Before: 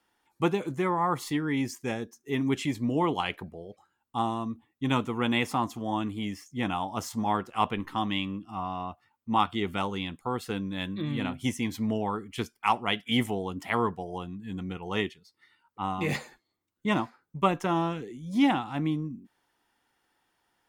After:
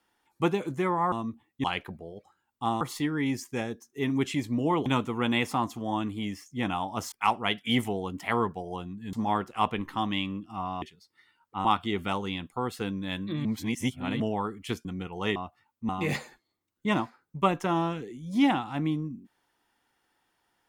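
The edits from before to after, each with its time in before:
0:01.12–0:03.17: swap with 0:04.34–0:04.86
0:08.81–0:09.34: swap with 0:15.06–0:15.89
0:11.14–0:11.89: reverse
0:12.54–0:14.55: move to 0:07.12

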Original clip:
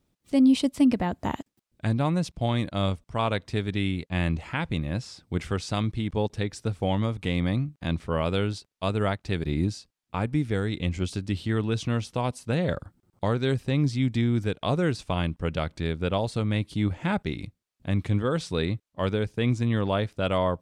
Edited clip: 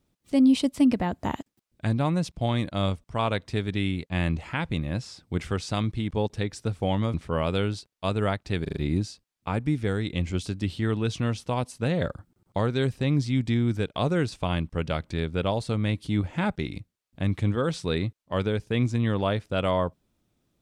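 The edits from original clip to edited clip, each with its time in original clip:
0:07.14–0:07.93: remove
0:09.42: stutter 0.04 s, 4 plays

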